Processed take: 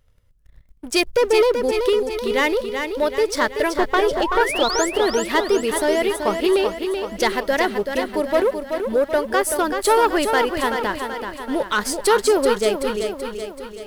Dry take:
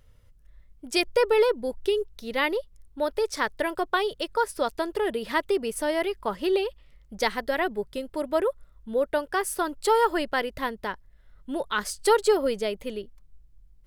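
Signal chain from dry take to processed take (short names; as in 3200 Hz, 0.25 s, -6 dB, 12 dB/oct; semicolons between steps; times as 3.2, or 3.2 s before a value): 3.77–4.41 tilt -2 dB/oct; sample leveller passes 2; 3.96–4.87 painted sound rise 320–8100 Hz -26 dBFS; lo-fi delay 0.381 s, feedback 55%, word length 9-bit, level -6.5 dB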